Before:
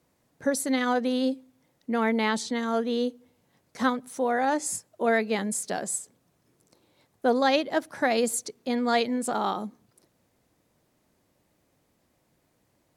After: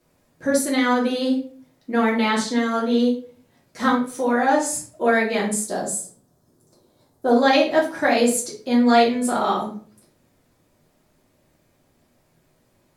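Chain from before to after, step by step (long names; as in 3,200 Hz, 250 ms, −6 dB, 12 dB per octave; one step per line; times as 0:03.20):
0:05.61–0:07.31: parametric band 2,400 Hz −14.5 dB 0.98 octaves
convolution reverb RT60 0.45 s, pre-delay 3 ms, DRR −5 dB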